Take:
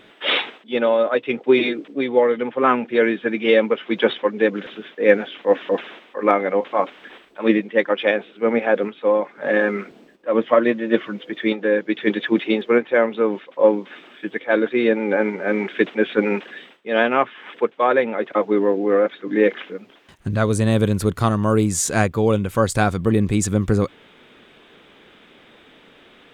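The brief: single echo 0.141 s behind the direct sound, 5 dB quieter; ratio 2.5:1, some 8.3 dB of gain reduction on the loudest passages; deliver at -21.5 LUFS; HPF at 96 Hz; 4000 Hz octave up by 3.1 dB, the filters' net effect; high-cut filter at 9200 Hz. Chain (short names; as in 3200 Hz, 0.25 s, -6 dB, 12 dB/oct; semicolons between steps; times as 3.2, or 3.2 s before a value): HPF 96 Hz; LPF 9200 Hz; bell 4000 Hz +4 dB; compressor 2.5:1, threshold -22 dBFS; echo 0.141 s -5 dB; gain +3 dB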